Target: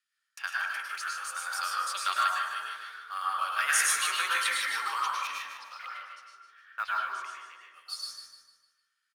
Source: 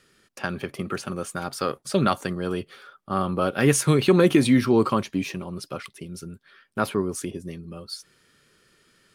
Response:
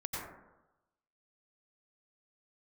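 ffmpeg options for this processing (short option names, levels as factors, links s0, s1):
-filter_complex "[0:a]highpass=f=1300:w=0.5412,highpass=f=1300:w=1.3066,agate=range=0.1:threshold=0.002:ratio=16:detection=peak,asettb=1/sr,asplit=3[s0][s1][s2];[s0]atrim=end=5.274[s3];[s1]atrim=start=5.27:end=7.65,asetpts=PTS-STARTPTS,afade=t=in:d=0.004:c=qsin,afade=t=out:st=2.376:d=0.004:c=qsin,lowpass=2900[s4];[s2]atrim=start=7.646[s5];[s3][s4]acrossfade=d=0.004:c1=hsin:c2=qsin[s6];[s6][s5]acrossfade=d=0.004:c1=qsin:c2=hsin,acrusher=bits=7:mode=log:mix=0:aa=0.000001,aecho=1:1:151|302|453|604|755:0.398|0.159|0.0637|0.0255|0.0102[s7];[1:a]atrim=start_sample=2205,asetrate=38367,aresample=44100[s8];[s7][s8]afir=irnorm=-1:irlink=0"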